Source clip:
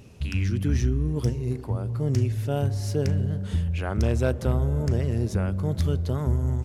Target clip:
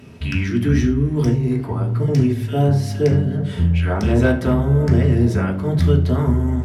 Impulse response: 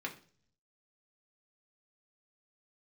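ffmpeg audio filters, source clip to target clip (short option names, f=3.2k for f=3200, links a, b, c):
-filter_complex "[0:a]asettb=1/sr,asplit=3[a][b][c];[a]atrim=end=2.034[d];[b]atrim=start=2.03:end=4.19,asetpts=PTS-STARTPTS,afade=t=in:d=0.004:c=qsin,afade=t=out:st=2.156:d=0.004:c=qsin,acrossover=split=1600[e][f];[e]adelay=50[g];[g][f]amix=inputs=2:normalize=0,atrim=end_sample=95256[h];[c]atrim=start=4.186[i];[d][h]acrossfade=d=0.004:c1=hsin:c2=qsin[j];[j][i]acrossfade=d=0.004:c1=qsin:c2=hsin[k];[1:a]atrim=start_sample=2205,afade=t=out:st=0.15:d=0.01,atrim=end_sample=7056,asetrate=37926,aresample=44100[l];[k][l]afir=irnorm=-1:irlink=0,volume=7.5dB"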